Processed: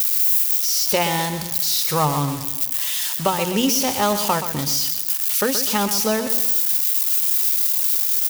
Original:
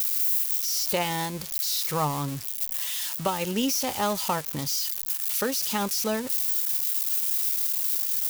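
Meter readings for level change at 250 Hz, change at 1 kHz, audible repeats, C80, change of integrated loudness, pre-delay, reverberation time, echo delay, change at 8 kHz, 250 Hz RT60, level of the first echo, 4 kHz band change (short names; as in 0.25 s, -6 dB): +6.5 dB, +7.0 dB, 4, none, +7.0 dB, none, none, 0.126 s, +7.0 dB, none, -10.0 dB, +7.0 dB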